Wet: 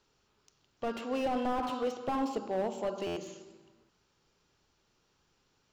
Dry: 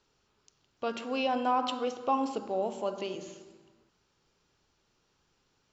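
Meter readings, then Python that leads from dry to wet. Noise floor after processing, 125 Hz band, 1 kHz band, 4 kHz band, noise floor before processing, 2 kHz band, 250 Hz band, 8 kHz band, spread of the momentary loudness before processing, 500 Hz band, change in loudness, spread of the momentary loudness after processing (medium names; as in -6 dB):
-74 dBFS, +3.5 dB, -4.5 dB, -6.0 dB, -74 dBFS, -3.5 dB, 0.0 dB, no reading, 11 LU, -1.0 dB, -2.5 dB, 8 LU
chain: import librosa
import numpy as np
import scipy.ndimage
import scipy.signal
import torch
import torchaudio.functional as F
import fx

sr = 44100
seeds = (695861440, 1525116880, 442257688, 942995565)

y = fx.buffer_glitch(x, sr, at_s=(3.06,), block=512, repeats=8)
y = fx.slew_limit(y, sr, full_power_hz=25.0)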